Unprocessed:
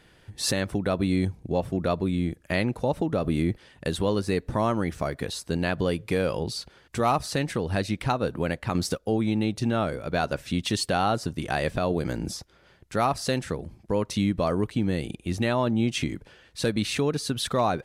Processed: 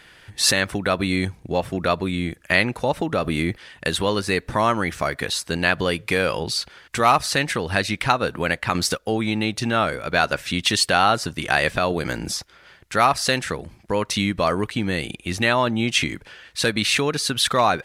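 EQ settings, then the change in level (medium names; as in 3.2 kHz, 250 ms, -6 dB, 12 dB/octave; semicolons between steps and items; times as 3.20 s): peaking EQ 1.8 kHz +10.5 dB 2.5 oct; treble shelf 3.9 kHz +8.5 dB; 0.0 dB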